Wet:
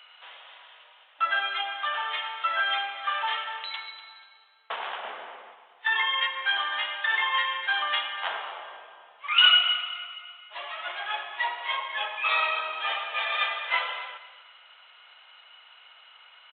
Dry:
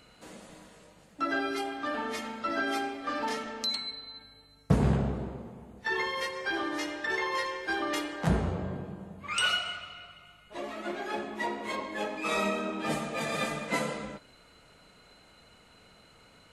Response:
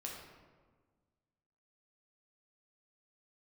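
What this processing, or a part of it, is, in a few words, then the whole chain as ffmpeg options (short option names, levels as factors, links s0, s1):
musical greeting card: -filter_complex "[0:a]asettb=1/sr,asplit=3[s0][s1][s2];[s0]atrim=end=5.034[s3];[s1]atrim=start=5.03:end=5.54,asetpts=PTS-STARTPTS,afade=t=in:d=0.004:c=qsin,afade=t=out:st=0.506:d=0.004:c=qsin,equalizer=f=125:t=o:w=1:g=10,equalizer=f=250:t=o:w=1:g=8,equalizer=f=500:t=o:w=1:g=4,equalizer=f=2000:t=o:w=1:g=6[s4];[s2]atrim=start=5.536[s5];[s3][s4]acrossfade=d=0.004:c1=hsin:c2=qsin[s6];[s6][s5]acrossfade=d=0.004:c1=qsin:c2=hsin,aecho=1:1:243|486|729:0.178|0.0498|0.0139,aresample=8000,aresample=44100,highpass=f=850:w=0.5412,highpass=f=850:w=1.3066,equalizer=f=3100:t=o:w=0.39:g=8,volume=2"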